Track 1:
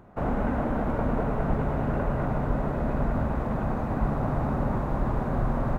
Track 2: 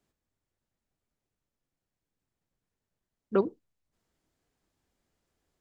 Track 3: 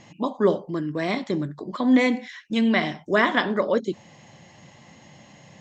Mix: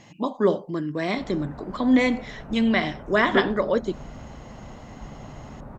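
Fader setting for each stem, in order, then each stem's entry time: -14.0, +2.5, -0.5 dB; 1.00, 0.00, 0.00 s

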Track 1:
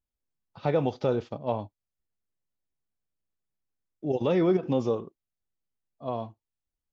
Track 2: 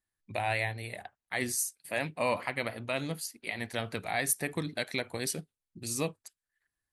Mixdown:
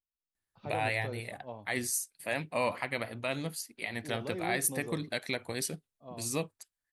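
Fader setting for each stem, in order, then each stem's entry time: -15.0, -1.0 dB; 0.00, 0.35 s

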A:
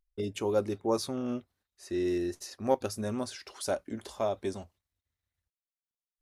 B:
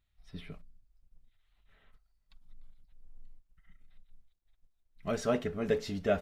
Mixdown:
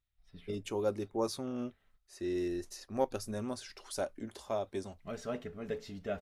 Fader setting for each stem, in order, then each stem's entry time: -4.5, -8.5 dB; 0.30, 0.00 s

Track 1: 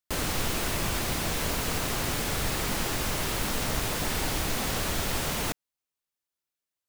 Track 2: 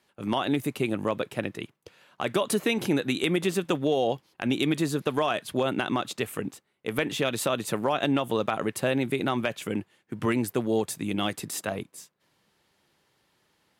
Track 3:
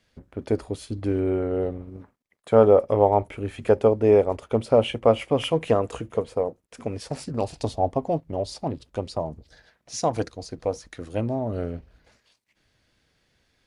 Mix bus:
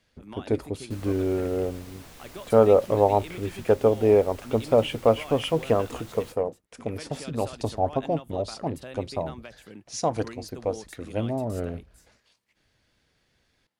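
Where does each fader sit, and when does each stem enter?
-18.5, -15.5, -1.5 dB; 0.80, 0.00, 0.00 s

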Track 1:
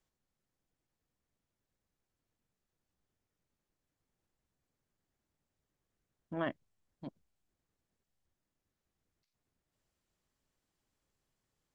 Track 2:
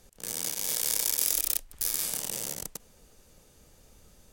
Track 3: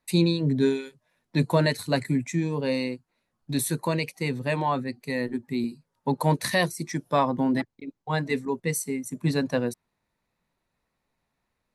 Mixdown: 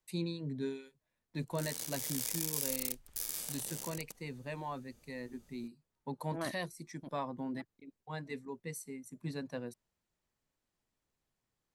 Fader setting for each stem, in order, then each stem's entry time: -3.5, -9.5, -15.5 dB; 0.00, 1.35, 0.00 s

